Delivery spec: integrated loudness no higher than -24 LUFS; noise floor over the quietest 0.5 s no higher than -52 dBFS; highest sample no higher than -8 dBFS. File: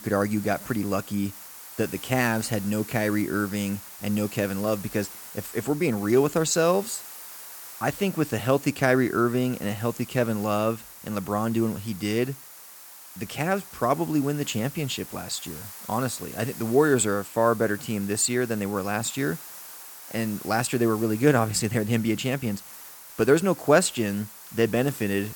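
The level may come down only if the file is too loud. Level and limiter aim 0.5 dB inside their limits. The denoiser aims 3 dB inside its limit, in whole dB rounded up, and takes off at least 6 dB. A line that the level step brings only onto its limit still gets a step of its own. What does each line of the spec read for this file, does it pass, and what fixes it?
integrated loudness -25.5 LUFS: pass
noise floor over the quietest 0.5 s -46 dBFS: fail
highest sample -5.0 dBFS: fail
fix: noise reduction 9 dB, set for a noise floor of -46 dBFS; peak limiter -8.5 dBFS

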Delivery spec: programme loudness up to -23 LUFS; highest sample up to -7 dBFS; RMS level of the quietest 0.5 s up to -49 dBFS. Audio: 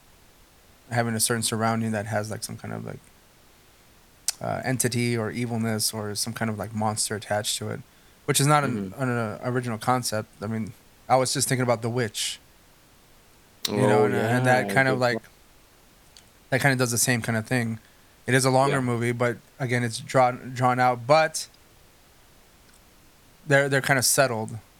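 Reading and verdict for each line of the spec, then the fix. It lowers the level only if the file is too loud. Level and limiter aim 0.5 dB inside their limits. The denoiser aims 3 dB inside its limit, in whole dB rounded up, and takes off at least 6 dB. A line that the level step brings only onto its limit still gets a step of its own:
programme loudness -24.5 LUFS: pass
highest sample -4.0 dBFS: fail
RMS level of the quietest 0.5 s -55 dBFS: pass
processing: peak limiter -7.5 dBFS

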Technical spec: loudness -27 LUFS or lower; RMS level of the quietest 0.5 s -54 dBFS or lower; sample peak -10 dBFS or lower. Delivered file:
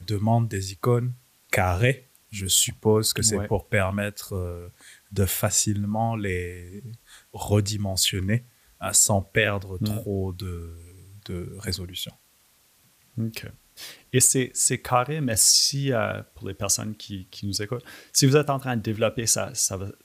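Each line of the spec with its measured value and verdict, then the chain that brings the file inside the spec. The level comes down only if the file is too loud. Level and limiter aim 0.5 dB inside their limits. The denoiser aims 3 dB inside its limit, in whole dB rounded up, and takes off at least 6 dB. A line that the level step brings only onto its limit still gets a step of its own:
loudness -23.5 LUFS: fail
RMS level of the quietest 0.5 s -61 dBFS: pass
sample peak -6.5 dBFS: fail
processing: trim -4 dB

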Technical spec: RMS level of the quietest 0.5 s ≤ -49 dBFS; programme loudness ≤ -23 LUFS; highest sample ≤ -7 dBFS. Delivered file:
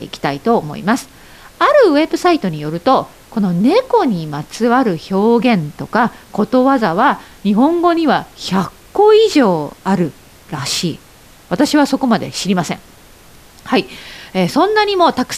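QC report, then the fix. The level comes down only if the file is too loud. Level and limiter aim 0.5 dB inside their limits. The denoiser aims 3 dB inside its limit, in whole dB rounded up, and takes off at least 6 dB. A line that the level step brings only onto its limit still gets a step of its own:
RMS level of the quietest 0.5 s -43 dBFS: fail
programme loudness -14.5 LUFS: fail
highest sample -1.5 dBFS: fail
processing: trim -9 dB

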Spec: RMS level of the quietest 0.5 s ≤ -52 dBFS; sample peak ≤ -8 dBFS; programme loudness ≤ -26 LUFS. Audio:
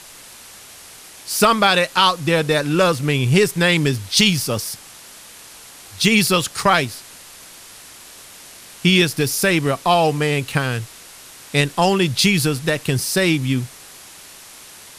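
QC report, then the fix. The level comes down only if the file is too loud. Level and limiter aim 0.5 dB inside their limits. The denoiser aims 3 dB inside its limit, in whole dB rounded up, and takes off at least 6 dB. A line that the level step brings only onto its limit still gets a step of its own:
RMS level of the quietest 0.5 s -41 dBFS: fail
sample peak -2.0 dBFS: fail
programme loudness -17.5 LUFS: fail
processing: noise reduction 6 dB, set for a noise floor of -41 dBFS; trim -9 dB

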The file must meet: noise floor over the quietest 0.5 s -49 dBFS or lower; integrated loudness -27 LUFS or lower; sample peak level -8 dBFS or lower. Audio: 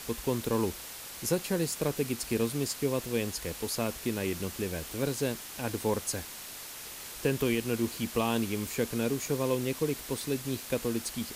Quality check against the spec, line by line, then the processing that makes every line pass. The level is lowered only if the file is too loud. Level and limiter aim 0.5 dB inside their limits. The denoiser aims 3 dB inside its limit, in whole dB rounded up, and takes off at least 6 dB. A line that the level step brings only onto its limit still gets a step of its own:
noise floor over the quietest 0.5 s -43 dBFS: fail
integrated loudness -32.0 LUFS: pass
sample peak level -15.0 dBFS: pass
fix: noise reduction 9 dB, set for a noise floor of -43 dBFS

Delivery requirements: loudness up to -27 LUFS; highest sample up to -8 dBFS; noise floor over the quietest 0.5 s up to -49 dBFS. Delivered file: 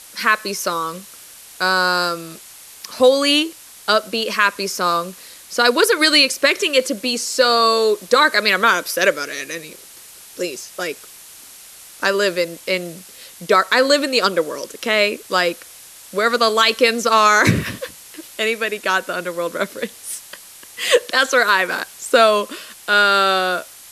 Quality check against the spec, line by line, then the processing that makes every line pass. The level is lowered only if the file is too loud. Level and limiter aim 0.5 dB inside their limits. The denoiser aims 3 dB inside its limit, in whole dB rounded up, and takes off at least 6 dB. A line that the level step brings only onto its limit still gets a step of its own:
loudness -17.0 LUFS: fail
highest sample -2.0 dBFS: fail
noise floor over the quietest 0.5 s -41 dBFS: fail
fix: trim -10.5 dB

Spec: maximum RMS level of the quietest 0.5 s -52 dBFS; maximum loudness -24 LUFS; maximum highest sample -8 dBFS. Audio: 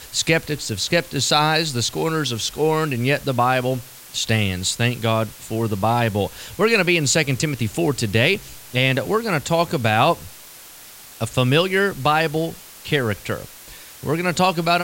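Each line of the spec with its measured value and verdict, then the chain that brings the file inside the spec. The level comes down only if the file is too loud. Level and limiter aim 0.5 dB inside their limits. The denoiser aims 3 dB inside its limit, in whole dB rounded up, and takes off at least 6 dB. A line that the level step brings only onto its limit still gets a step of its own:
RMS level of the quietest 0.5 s -42 dBFS: fail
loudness -20.5 LUFS: fail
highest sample -4.0 dBFS: fail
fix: noise reduction 9 dB, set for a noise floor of -42 dBFS; trim -4 dB; peak limiter -8.5 dBFS

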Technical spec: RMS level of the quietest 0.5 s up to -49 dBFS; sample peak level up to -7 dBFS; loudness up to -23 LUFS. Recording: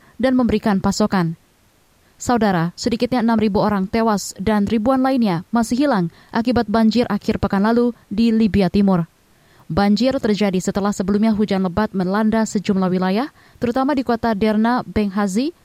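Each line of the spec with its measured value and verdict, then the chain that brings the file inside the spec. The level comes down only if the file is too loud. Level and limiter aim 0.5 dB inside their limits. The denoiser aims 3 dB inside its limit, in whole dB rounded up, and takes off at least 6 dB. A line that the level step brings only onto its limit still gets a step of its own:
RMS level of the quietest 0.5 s -56 dBFS: pass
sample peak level -2.5 dBFS: fail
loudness -18.5 LUFS: fail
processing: trim -5 dB

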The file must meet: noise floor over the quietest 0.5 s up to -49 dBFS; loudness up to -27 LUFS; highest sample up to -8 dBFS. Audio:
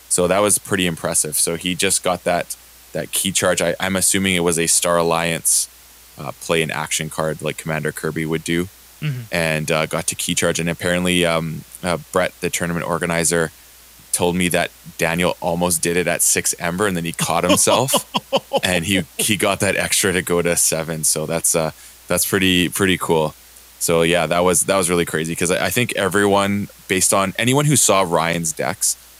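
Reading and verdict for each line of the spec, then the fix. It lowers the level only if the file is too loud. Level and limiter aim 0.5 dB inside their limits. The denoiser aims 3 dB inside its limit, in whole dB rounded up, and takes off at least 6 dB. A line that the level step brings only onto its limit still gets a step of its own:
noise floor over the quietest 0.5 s -45 dBFS: fail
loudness -18.0 LUFS: fail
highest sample -3.0 dBFS: fail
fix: trim -9.5 dB

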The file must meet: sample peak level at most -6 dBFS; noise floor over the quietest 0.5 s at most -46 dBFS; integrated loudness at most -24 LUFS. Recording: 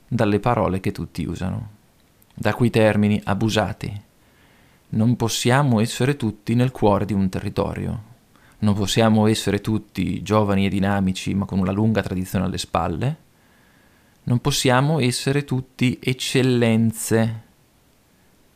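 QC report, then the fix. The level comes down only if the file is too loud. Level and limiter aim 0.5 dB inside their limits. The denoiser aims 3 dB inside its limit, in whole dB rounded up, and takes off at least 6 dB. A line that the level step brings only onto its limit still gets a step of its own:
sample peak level -5.0 dBFS: fail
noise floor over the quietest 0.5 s -57 dBFS: pass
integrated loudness -21.0 LUFS: fail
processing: trim -3.5 dB

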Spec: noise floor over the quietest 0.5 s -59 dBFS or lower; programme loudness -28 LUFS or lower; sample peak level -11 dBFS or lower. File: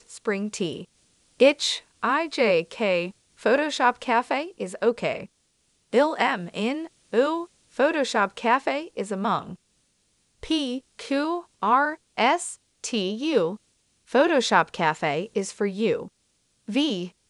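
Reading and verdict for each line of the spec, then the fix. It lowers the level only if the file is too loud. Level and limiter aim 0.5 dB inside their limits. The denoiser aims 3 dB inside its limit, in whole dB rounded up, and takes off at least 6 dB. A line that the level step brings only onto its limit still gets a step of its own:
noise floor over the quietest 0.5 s -69 dBFS: pass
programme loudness -24.5 LUFS: fail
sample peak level -4.5 dBFS: fail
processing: trim -4 dB; peak limiter -11.5 dBFS

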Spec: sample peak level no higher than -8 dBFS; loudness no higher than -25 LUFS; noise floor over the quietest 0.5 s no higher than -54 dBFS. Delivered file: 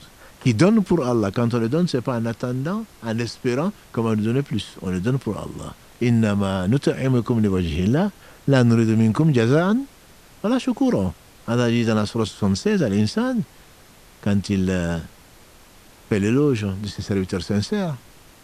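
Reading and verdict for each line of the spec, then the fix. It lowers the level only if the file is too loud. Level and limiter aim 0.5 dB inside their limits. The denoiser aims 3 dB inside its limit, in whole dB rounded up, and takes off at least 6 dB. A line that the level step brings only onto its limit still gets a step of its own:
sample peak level -3.5 dBFS: fail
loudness -21.5 LUFS: fail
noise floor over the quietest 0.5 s -48 dBFS: fail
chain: noise reduction 6 dB, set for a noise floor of -48 dBFS; trim -4 dB; peak limiter -8.5 dBFS

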